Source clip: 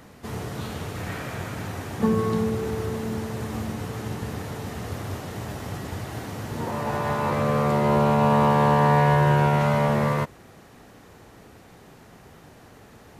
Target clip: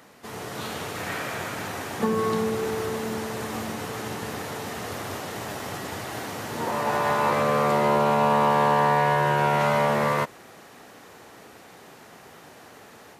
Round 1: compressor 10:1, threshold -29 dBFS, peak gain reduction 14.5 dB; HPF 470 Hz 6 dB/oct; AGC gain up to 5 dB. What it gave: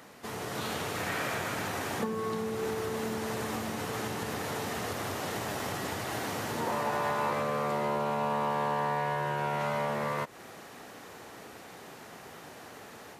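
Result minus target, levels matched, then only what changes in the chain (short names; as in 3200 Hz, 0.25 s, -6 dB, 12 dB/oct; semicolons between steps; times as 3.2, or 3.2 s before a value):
compressor: peak gain reduction +10 dB
change: compressor 10:1, threshold -18 dBFS, peak gain reduction 4.5 dB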